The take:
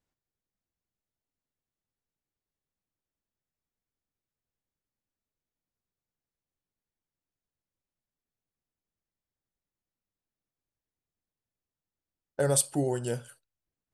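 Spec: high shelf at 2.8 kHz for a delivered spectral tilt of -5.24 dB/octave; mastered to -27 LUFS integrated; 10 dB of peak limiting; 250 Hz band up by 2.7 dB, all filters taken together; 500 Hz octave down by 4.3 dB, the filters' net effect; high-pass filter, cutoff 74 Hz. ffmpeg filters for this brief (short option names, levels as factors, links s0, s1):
-af "highpass=74,equalizer=f=250:t=o:g=6,equalizer=f=500:t=o:g=-7,highshelf=f=2800:g=-6.5,volume=2.99,alimiter=limit=0.15:level=0:latency=1"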